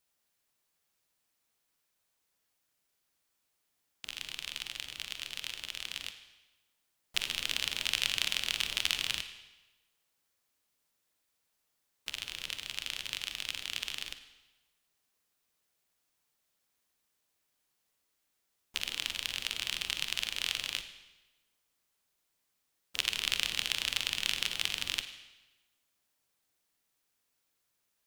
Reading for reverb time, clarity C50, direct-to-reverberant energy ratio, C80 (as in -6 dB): 1.1 s, 10.0 dB, 8.5 dB, 11.5 dB